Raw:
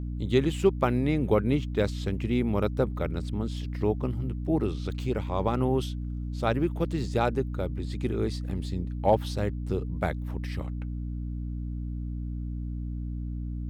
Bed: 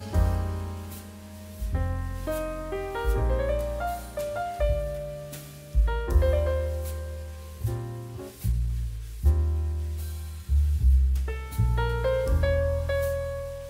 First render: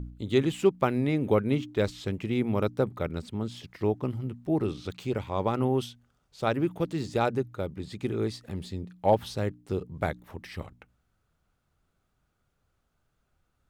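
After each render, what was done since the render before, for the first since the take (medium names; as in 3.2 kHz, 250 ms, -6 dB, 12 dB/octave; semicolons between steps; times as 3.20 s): de-hum 60 Hz, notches 5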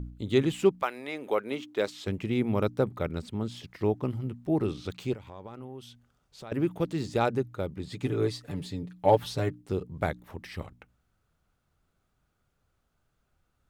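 0.81–2.06 s: high-pass 820 Hz -> 270 Hz; 5.14–6.52 s: compression 3:1, threshold -45 dBFS; 7.91–9.62 s: comb 6.9 ms, depth 71%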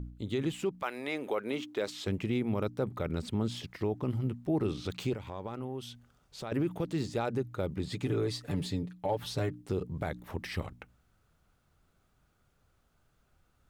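gain riding within 4 dB 0.5 s; peak limiter -22 dBFS, peak gain reduction 11 dB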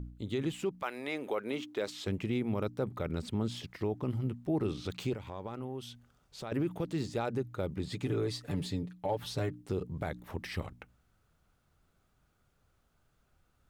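trim -1.5 dB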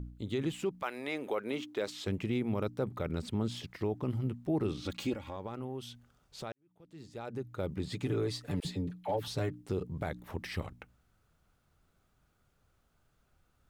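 4.82–5.36 s: comb 3.6 ms; 6.52–7.68 s: fade in quadratic; 8.60–9.28 s: phase dispersion lows, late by 48 ms, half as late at 690 Hz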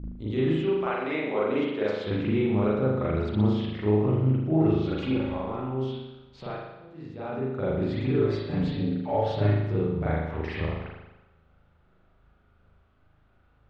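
distance through air 190 m; spring tank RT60 1 s, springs 38 ms, chirp 25 ms, DRR -9 dB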